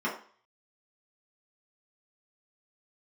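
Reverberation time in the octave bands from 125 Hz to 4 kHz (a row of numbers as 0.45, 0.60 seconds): 0.30, 0.40, 0.45, 0.50, 0.45, 0.45 seconds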